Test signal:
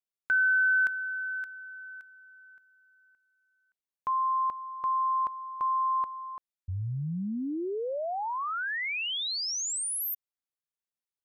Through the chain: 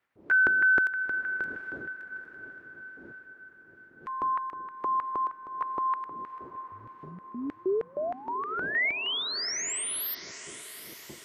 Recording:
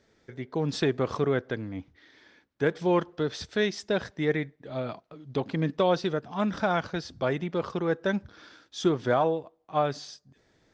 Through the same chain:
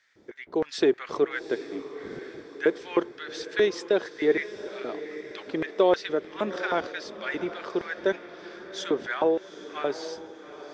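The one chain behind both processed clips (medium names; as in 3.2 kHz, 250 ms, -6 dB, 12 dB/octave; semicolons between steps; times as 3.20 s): wind noise 83 Hz -36 dBFS; LFO high-pass square 3.2 Hz 360–1800 Hz; echo that smears into a reverb 796 ms, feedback 51%, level -13 dB; trim -1 dB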